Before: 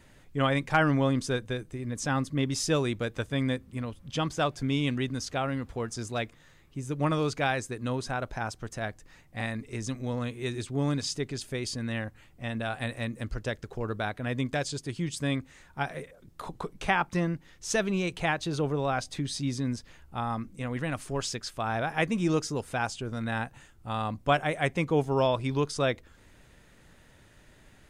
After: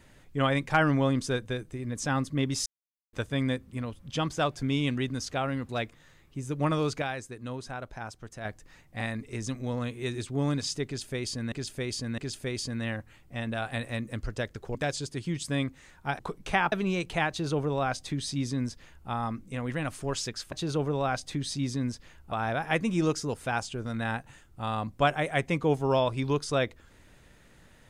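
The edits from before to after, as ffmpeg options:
-filter_complex "[0:a]asplit=13[s0][s1][s2][s3][s4][s5][s6][s7][s8][s9][s10][s11][s12];[s0]atrim=end=2.66,asetpts=PTS-STARTPTS,afade=t=out:st=2.656:d=0.004:c=hsin[s13];[s1]atrim=start=2.66:end=3.13,asetpts=PTS-STARTPTS,volume=0[s14];[s2]atrim=start=3.13:end=5.692,asetpts=PTS-STARTPTS,afade=t=in:d=0.004:c=hsin[s15];[s3]atrim=start=6.088:end=7.422[s16];[s4]atrim=start=7.418:end=8.852,asetpts=PTS-STARTPTS,volume=0.501[s17];[s5]atrim=start=8.848:end=11.922[s18];[s6]atrim=start=11.258:end=11.922[s19];[s7]atrim=start=11.258:end=13.832[s20];[s8]atrim=start=14.468:end=15.912[s21];[s9]atrim=start=16.538:end=17.072[s22];[s10]atrim=start=17.788:end=21.592[s23];[s11]atrim=start=18.358:end=20.162[s24];[s12]atrim=start=21.588[s25];[s13][s14][s15]concat=n=3:v=0:a=1[s26];[s26][s16]acrossfade=d=0.004:c1=hsin:c2=hsin[s27];[s27][s17]acrossfade=d=0.004:c1=hsin:c2=hsin[s28];[s28][s18]acrossfade=d=0.004:c1=hsin:c2=hsin[s29];[s29][s19]acrossfade=d=0.004:c1=hsin:c2=hsin[s30];[s30][s20]acrossfade=d=0.004:c1=hsin:c2=hsin[s31];[s31][s21]acrossfade=d=0.004:c1=hsin:c2=hsin[s32];[s32][s22]acrossfade=d=0.004:c1=hsin:c2=hsin[s33];[s33][s23]acrossfade=d=0.004:c1=hsin:c2=hsin[s34];[s34][s24]acrossfade=d=0.004:c1=hsin:c2=hsin[s35];[s35][s25]acrossfade=d=0.004:c1=hsin:c2=hsin"

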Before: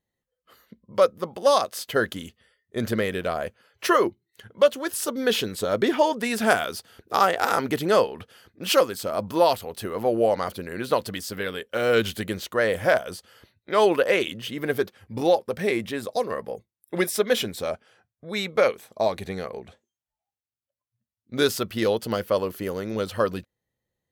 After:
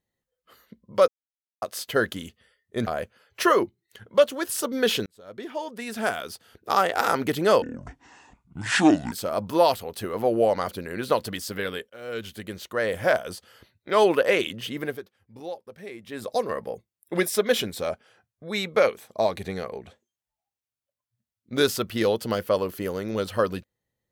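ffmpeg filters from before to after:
-filter_complex "[0:a]asplit=10[s0][s1][s2][s3][s4][s5][s6][s7][s8][s9];[s0]atrim=end=1.08,asetpts=PTS-STARTPTS,afade=t=out:st=1.076:d=0.004:c=hsin[s10];[s1]atrim=start=1.08:end=1.62,asetpts=PTS-STARTPTS,volume=0[s11];[s2]atrim=start=1.62:end=2.872,asetpts=PTS-STARTPTS,afade=t=in:d=0.004:c=hsin[s12];[s3]atrim=start=3.308:end=5.5,asetpts=PTS-STARTPTS,afade=t=out:st=2.188:d=0.004:c=hsin[s13];[s4]atrim=start=5.5:end=8.064,asetpts=PTS-STARTPTS,afade=t=in:d=2.05[s14];[s5]atrim=start=8.06:end=8.93,asetpts=PTS-STARTPTS,asetrate=25578,aresample=44100[s15];[s6]atrim=start=8.926:end=11.71,asetpts=PTS-STARTPTS,afade=t=out:st=2.78:d=0.004:c=hsin:silence=0.0841395[s16];[s7]atrim=start=11.71:end=14.82,asetpts=PTS-STARTPTS,afade=t=in:d=1.42:silence=0.0841395,afade=t=out:st=2.86:d=0.25:silence=0.16788[s17];[s8]atrim=start=14.82:end=15.85,asetpts=PTS-STARTPTS,volume=0.168[s18];[s9]atrim=start=15.85,asetpts=PTS-STARTPTS,afade=t=in:d=0.25:silence=0.16788[s19];[s10][s11][s12]concat=n=3:v=0:a=1[s20];[s13][s14]concat=n=2:v=0:a=1[s21];[s20][s21]acrossfade=d=0.004:c1=hsin:c2=hsin[s22];[s22][s15]acrossfade=d=0.004:c1=hsin:c2=hsin[s23];[s16][s17][s18][s19]concat=n=4:v=0:a=1[s24];[s23][s24]acrossfade=d=0.004:c1=hsin:c2=hsin"

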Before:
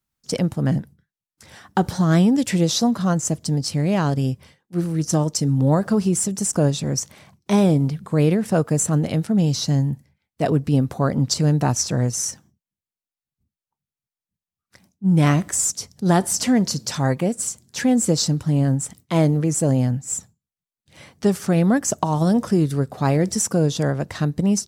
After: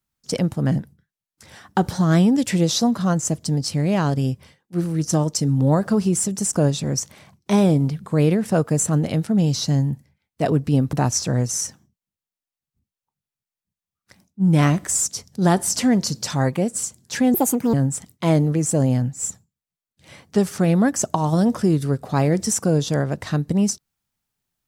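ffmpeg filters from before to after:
-filter_complex "[0:a]asplit=4[s0][s1][s2][s3];[s0]atrim=end=10.932[s4];[s1]atrim=start=11.568:end=17.984[s5];[s2]atrim=start=17.98:end=18.62,asetpts=PTS-STARTPTS,asetrate=71442,aresample=44100,atrim=end_sample=17422,asetpts=PTS-STARTPTS[s6];[s3]atrim=start=18.616[s7];[s4][s5]acrossfade=d=0.004:c1=hsin:c2=hsin[s8];[s8][s6]acrossfade=d=0.004:c1=hsin:c2=hsin[s9];[s9][s7]acrossfade=d=0.004:c1=hsin:c2=hsin"

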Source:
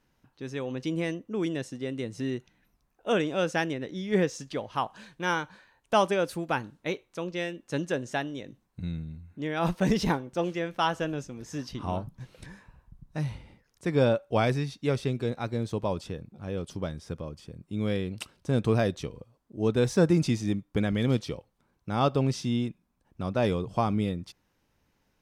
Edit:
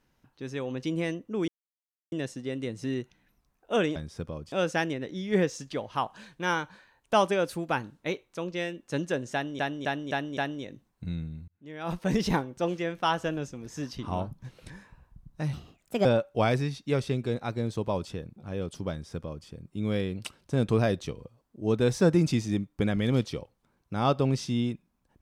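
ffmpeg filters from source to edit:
-filter_complex "[0:a]asplit=11[s0][s1][s2][s3][s4][s5][s6][s7][s8][s9][s10];[s0]atrim=end=1.48,asetpts=PTS-STARTPTS,afade=t=out:st=1.476:d=0.004:c=hsin,apad=pad_dur=0.64[s11];[s1]atrim=start=1.48:end=3.322,asetpts=PTS-STARTPTS,afade=t=in:d=0.004:c=hsin[s12];[s2]atrim=start=16.868:end=17.432[s13];[s3]atrim=start=3.318:end=8.392[s14];[s4]atrim=start=8.128:end=8.392[s15];[s5]atrim=start=8.128:end=8.392[s16];[s6]atrim=start=8.128:end=8.392[s17];[s7]atrim=start=8.128:end=9.24,asetpts=PTS-STARTPTS,afade=t=out:st=1.108:d=0.004:c=hsin[s18];[s8]atrim=start=9.24:end=13.294,asetpts=PTS-STARTPTS,afade=t=in:d=0.81[s19];[s9]atrim=start=13.29:end=14.01,asetpts=PTS-STARTPTS,asetrate=60858,aresample=44100[s20];[s10]atrim=start=14.006[s21];[s11][s12]concat=n=2:v=0:a=1[s22];[s22][s13]acrossfade=d=0.004:c1=hsin:c2=hsin[s23];[s23][s14]acrossfade=d=0.004:c1=hsin:c2=hsin[s24];[s24][s15]acrossfade=d=0.004:c1=hsin:c2=hsin[s25];[s25][s16]acrossfade=d=0.004:c1=hsin:c2=hsin[s26];[s26][s17]acrossfade=d=0.004:c1=hsin:c2=hsin[s27];[s18][s19]concat=n=2:v=0:a=1[s28];[s27][s28]acrossfade=d=0.004:c1=hsin:c2=hsin[s29];[s29][s20]acrossfade=d=0.004:c1=hsin:c2=hsin[s30];[s30][s21]acrossfade=d=0.004:c1=hsin:c2=hsin"

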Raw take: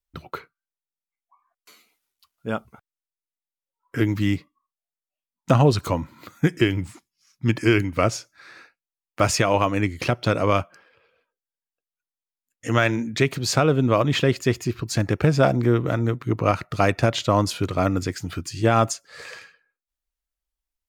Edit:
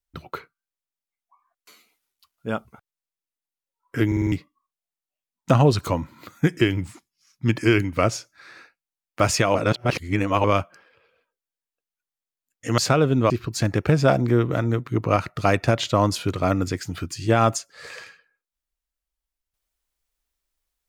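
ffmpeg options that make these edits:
-filter_complex "[0:a]asplit=10[s0][s1][s2][s3][s4][s5][s6][s7][s8][s9];[s0]atrim=end=4.122[s10];[s1]atrim=start=4.068:end=4.122[s11];[s2]atrim=start=4.068:end=4.122[s12];[s3]atrim=start=4.068:end=4.122[s13];[s4]atrim=start=4.068:end=4.122[s14];[s5]atrim=start=4.318:end=9.552[s15];[s6]atrim=start=9.548:end=10.442,asetpts=PTS-STARTPTS,areverse[s16];[s7]atrim=start=10.438:end=12.782[s17];[s8]atrim=start=13.448:end=13.972[s18];[s9]atrim=start=14.648[s19];[s10][s11]acrossfade=d=0.004:c1=hsin:c2=hsin[s20];[s20][s12]acrossfade=d=0.004:c1=hsin:c2=hsin[s21];[s21][s13]acrossfade=d=0.004:c1=hsin:c2=hsin[s22];[s22][s14]acrossfade=d=0.004:c1=hsin:c2=hsin[s23];[s23][s15]acrossfade=d=0.004:c1=hsin:c2=hsin[s24];[s24][s16]acrossfade=d=0.004:c1=hsin:c2=hsin[s25];[s25][s17]acrossfade=d=0.004:c1=hsin:c2=hsin[s26];[s26][s18]acrossfade=d=0.004:c1=hsin:c2=hsin[s27];[s27][s19]acrossfade=d=0.004:c1=hsin:c2=hsin"

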